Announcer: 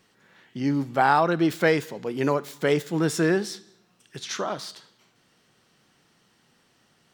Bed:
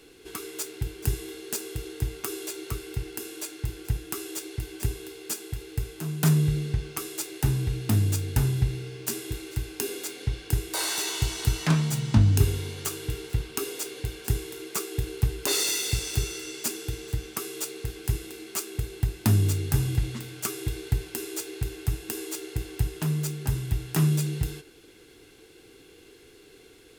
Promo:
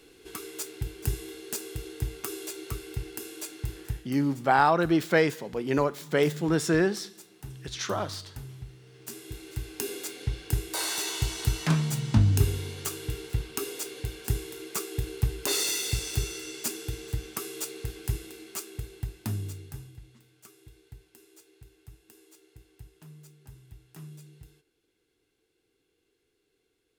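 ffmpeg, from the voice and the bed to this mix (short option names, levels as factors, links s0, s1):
-filter_complex "[0:a]adelay=3500,volume=0.841[s0];[1:a]volume=4.73,afade=t=out:st=3.77:d=0.38:silence=0.16788,afade=t=in:st=8.81:d=1.09:silence=0.158489,afade=t=out:st=17.85:d=2.08:silence=0.0944061[s1];[s0][s1]amix=inputs=2:normalize=0"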